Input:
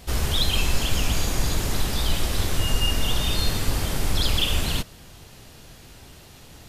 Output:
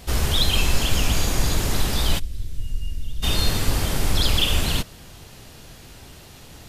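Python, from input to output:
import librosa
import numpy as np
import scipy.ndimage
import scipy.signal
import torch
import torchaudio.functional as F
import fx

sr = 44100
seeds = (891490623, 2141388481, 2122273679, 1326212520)

y = fx.tone_stack(x, sr, knobs='10-0-1', at=(2.18, 3.22), fade=0.02)
y = y * librosa.db_to_amplitude(2.5)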